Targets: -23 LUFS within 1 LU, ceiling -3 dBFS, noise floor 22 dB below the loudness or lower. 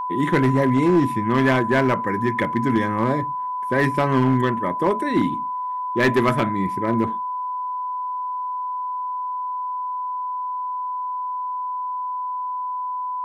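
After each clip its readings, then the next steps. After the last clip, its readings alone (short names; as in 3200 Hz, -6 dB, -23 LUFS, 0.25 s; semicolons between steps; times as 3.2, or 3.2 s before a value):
clipped 0.8%; flat tops at -11.5 dBFS; steady tone 1000 Hz; tone level -24 dBFS; loudness -22.5 LUFS; peak -11.5 dBFS; loudness target -23.0 LUFS
-> clip repair -11.5 dBFS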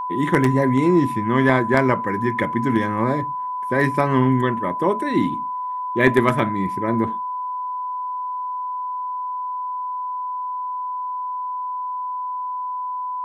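clipped 0.0%; steady tone 1000 Hz; tone level -24 dBFS
-> notch 1000 Hz, Q 30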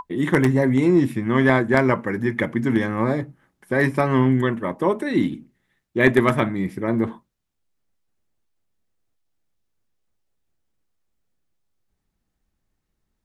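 steady tone none; loudness -20.5 LUFS; peak -2.5 dBFS; loudness target -23.0 LUFS
-> gain -2.5 dB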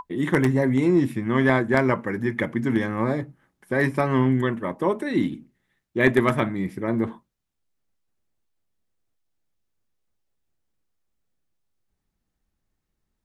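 loudness -23.0 LUFS; peak -5.0 dBFS; noise floor -80 dBFS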